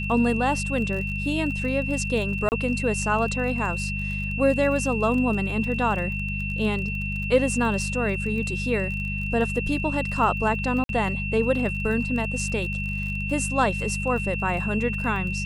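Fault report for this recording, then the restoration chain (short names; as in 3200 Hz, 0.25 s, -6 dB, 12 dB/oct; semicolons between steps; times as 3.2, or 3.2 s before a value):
crackle 29/s -32 dBFS
hum 50 Hz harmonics 4 -30 dBFS
tone 2700 Hz -30 dBFS
2.49–2.52 gap 29 ms
10.84–10.89 gap 52 ms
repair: de-click; de-hum 50 Hz, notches 4; notch 2700 Hz, Q 30; interpolate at 2.49, 29 ms; interpolate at 10.84, 52 ms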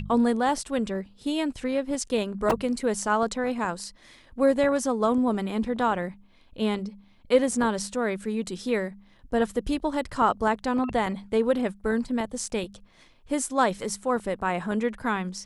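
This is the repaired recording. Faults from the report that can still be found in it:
none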